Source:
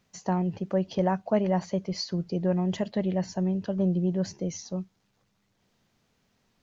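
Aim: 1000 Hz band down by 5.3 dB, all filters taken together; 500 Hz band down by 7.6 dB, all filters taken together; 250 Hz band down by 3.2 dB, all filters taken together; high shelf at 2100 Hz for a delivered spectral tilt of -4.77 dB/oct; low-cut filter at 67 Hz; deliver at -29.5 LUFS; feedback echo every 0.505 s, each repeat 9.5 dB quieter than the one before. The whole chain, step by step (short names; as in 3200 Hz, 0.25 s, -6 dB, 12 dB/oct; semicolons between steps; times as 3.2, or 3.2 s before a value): HPF 67 Hz; bell 250 Hz -3.5 dB; bell 500 Hz -8.5 dB; bell 1000 Hz -4.5 dB; high shelf 2100 Hz +8 dB; feedback echo 0.505 s, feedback 33%, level -9.5 dB; gain +2 dB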